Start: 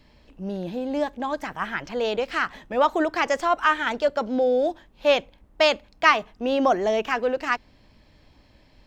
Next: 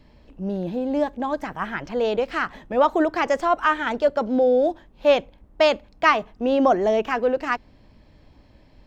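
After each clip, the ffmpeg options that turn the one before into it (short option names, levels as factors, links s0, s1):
-af "tiltshelf=f=1300:g=4"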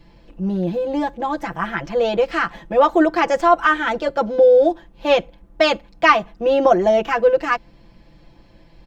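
-af "aecho=1:1:5.9:0.95,volume=1.19"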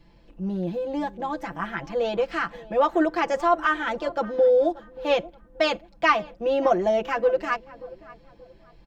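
-filter_complex "[0:a]asplit=2[s0][s1];[s1]adelay=581,lowpass=f=1500:p=1,volume=0.119,asplit=2[s2][s3];[s3]adelay=581,lowpass=f=1500:p=1,volume=0.36,asplit=2[s4][s5];[s5]adelay=581,lowpass=f=1500:p=1,volume=0.36[s6];[s0][s2][s4][s6]amix=inputs=4:normalize=0,volume=0.473"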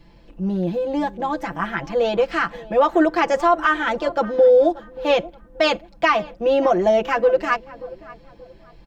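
-af "alimiter=level_in=3.98:limit=0.891:release=50:level=0:latency=1,volume=0.473"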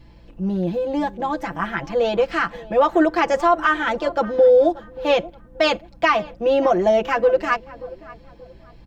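-af "aeval=exprs='val(0)+0.00316*(sin(2*PI*60*n/s)+sin(2*PI*2*60*n/s)/2+sin(2*PI*3*60*n/s)/3+sin(2*PI*4*60*n/s)/4+sin(2*PI*5*60*n/s)/5)':c=same"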